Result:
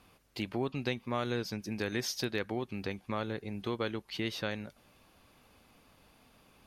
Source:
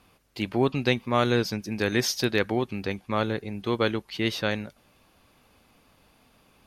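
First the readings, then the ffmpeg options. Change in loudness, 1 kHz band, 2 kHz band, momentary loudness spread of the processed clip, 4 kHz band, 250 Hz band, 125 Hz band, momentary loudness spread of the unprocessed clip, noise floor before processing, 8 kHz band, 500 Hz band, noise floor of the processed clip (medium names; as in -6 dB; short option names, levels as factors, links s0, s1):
-9.5 dB, -10.0 dB, -9.5 dB, 5 LU, -8.5 dB, -9.0 dB, -9.0 dB, 8 LU, -63 dBFS, -8.5 dB, -10.0 dB, -65 dBFS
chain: -af "acompressor=threshold=0.02:ratio=2,volume=0.794"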